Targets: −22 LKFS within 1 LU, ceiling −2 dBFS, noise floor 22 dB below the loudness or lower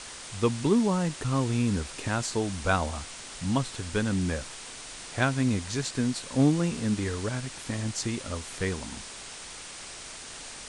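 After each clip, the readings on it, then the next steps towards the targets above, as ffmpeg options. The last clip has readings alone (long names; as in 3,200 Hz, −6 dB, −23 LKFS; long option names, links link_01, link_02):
background noise floor −43 dBFS; target noise floor −51 dBFS; integrated loudness −29.0 LKFS; sample peak −10.0 dBFS; target loudness −22.0 LKFS
→ -af "afftdn=noise_reduction=8:noise_floor=-43"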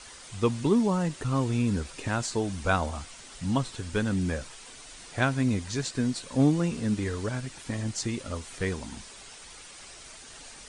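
background noise floor −47 dBFS; target noise floor −51 dBFS
→ -af "afftdn=noise_reduction=6:noise_floor=-47"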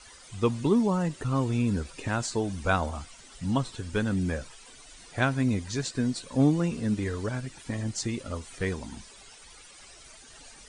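background noise floor −51 dBFS; integrated loudness −29.0 LKFS; sample peak −10.5 dBFS; target loudness −22.0 LKFS
→ -af "volume=7dB"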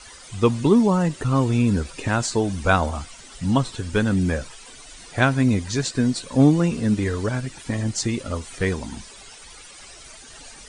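integrated loudness −22.0 LKFS; sample peak −3.5 dBFS; background noise floor −44 dBFS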